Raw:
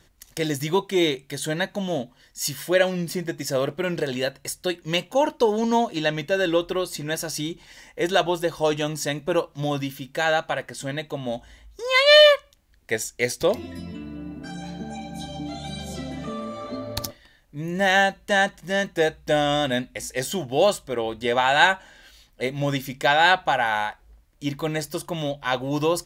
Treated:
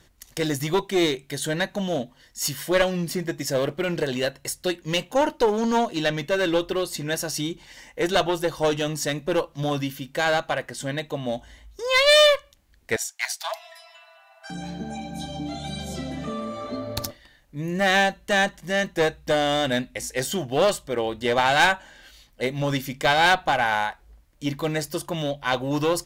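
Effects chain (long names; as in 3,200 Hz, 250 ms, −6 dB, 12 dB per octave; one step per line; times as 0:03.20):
asymmetric clip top −21 dBFS, bottom −6.5 dBFS
0:12.96–0:14.50: Chebyshev high-pass filter 650 Hz, order 10
level +1 dB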